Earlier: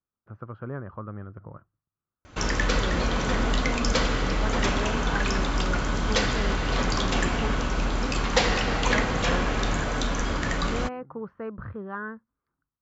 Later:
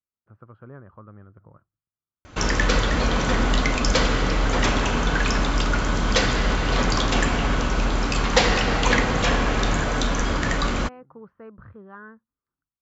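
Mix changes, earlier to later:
speech -8.0 dB; background +4.0 dB

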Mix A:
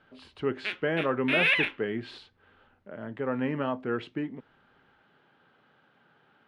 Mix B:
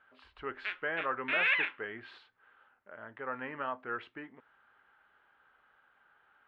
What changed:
speech: remove high-pass 140 Hz 24 dB/octave; master: add band-pass filter 1.4 kHz, Q 1.3

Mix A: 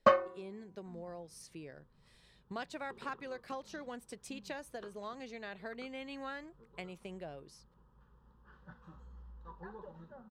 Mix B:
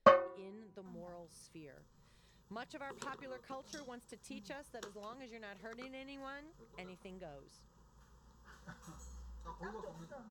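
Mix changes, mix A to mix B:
speech -5.5 dB; second sound: remove distance through air 400 m

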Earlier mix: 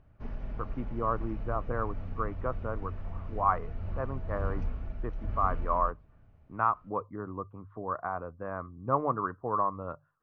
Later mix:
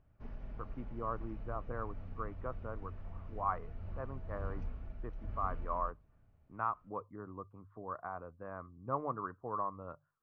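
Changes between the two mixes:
speech -8.5 dB; background -8.0 dB

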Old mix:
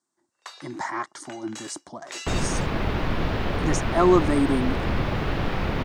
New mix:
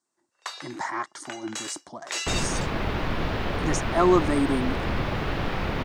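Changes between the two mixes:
first sound +6.0 dB; master: add bass shelf 450 Hz -3 dB

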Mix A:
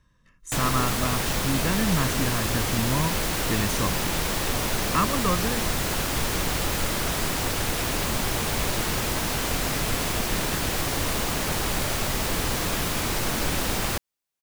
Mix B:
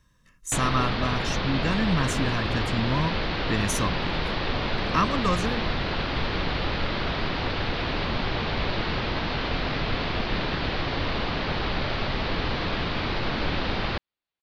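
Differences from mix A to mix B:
speech: add treble shelf 4.3 kHz +7 dB; background: add steep low-pass 4.5 kHz 48 dB/octave

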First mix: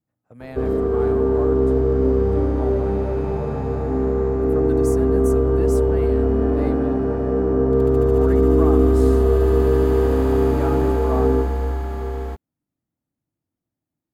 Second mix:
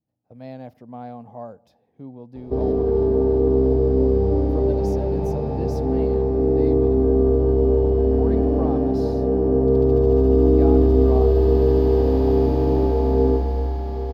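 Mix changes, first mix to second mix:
background: entry +1.95 s; master: add FFT filter 810 Hz 0 dB, 1.3 kHz -14 dB, 5.2 kHz +2 dB, 8.2 kHz -22 dB, 14 kHz -9 dB

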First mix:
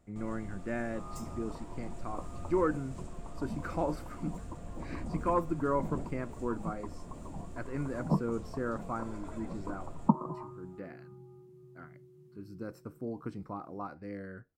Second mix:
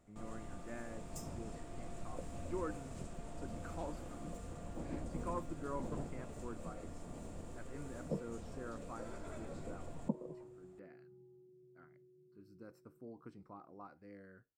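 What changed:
speech -12.0 dB; second sound: add four-pole ladder low-pass 550 Hz, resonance 70%; master: add bass shelf 150 Hz -5.5 dB

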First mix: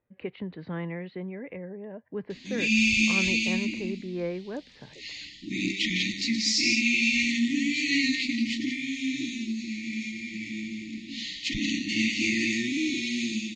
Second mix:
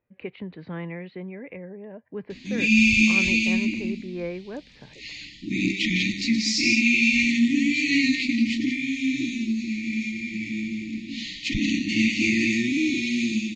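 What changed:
background: add bass shelf 380 Hz +8 dB; master: add peaking EQ 2.4 kHz +5.5 dB 0.24 oct

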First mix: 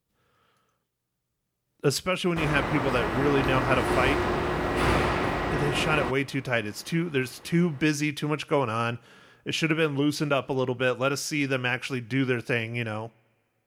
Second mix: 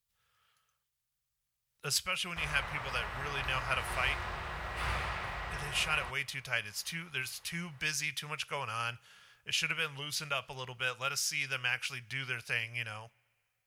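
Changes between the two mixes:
background: add treble shelf 2.7 kHz -10 dB; master: add amplifier tone stack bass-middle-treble 10-0-10

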